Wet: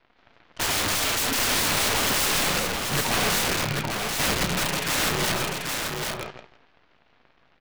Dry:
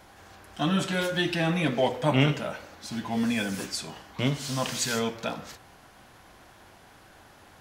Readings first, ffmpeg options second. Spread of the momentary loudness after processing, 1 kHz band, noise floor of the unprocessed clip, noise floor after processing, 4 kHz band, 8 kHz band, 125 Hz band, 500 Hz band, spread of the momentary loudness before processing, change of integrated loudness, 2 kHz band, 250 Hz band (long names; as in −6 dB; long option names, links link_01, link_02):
7 LU, +5.5 dB, −54 dBFS, −62 dBFS, +8.5 dB, +12.0 dB, −2.5 dB, −0.5 dB, 13 LU, +4.5 dB, +7.0 dB, −4.0 dB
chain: -filter_complex "[0:a]highpass=frequency=190:width_type=q:width=0.5412,highpass=frequency=190:width_type=q:width=1.307,lowpass=frequency=2900:width_type=q:width=0.5176,lowpass=frequency=2900:width_type=q:width=0.7071,lowpass=frequency=2900:width_type=q:width=1.932,afreqshift=-85,aemphasis=mode=production:type=50kf,asplit=2[link_01][link_02];[link_02]aecho=0:1:163|326|489|652|815:0.398|0.183|0.0842|0.0388|0.0178[link_03];[link_01][link_03]amix=inputs=2:normalize=0,aeval=exprs='(mod(25.1*val(0)+1,2)-1)/25.1':channel_layout=same,asplit=2[link_04][link_05];[link_05]adelay=33,volume=-12.5dB[link_06];[link_04][link_06]amix=inputs=2:normalize=0,aeval=exprs='0.0501*(cos(1*acos(clip(val(0)/0.0501,-1,1)))-cos(1*PI/2))+0.00708*(cos(7*acos(clip(val(0)/0.0501,-1,1)))-cos(7*PI/2))+0.00251*(cos(8*acos(clip(val(0)/0.0501,-1,1)))-cos(8*PI/2))':channel_layout=same,asplit=2[link_07][link_08];[link_08]aecho=0:1:787:0.631[link_09];[link_07][link_09]amix=inputs=2:normalize=0,volume=7.5dB"